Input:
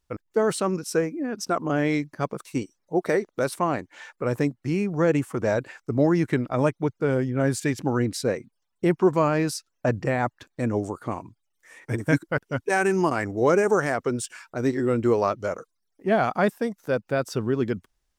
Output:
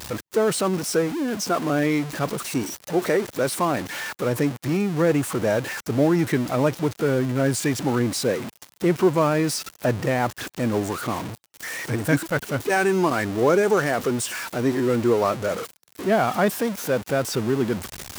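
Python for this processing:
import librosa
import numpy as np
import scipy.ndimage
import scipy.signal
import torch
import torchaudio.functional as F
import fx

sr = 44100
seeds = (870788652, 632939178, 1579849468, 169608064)

y = x + 0.5 * 10.0 ** (-26.5 / 20.0) * np.sign(x)
y = scipy.signal.sosfilt(scipy.signal.butter(2, 95.0, 'highpass', fs=sr, output='sos'), y)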